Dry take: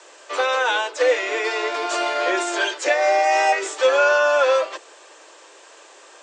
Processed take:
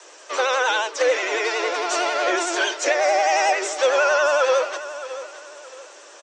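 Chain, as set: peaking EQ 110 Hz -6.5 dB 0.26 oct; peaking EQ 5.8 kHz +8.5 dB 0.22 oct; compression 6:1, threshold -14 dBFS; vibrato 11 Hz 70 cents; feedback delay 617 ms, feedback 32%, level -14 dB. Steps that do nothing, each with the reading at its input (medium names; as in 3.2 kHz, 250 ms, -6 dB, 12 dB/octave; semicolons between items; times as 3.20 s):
peaking EQ 110 Hz: input has nothing below 290 Hz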